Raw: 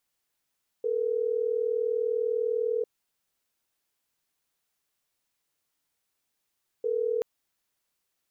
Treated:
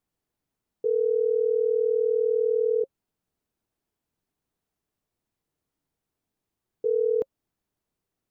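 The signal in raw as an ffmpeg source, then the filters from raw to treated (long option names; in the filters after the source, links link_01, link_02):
-f lavfi -i "aevalsrc='0.0422*(sin(2*PI*440*t)+sin(2*PI*480*t))*clip(min(mod(t,6),2-mod(t,6))/0.005,0,1)':duration=6.38:sample_rate=44100"
-af "tiltshelf=frequency=820:gain=9.5,bandreject=frequency=540:width=12"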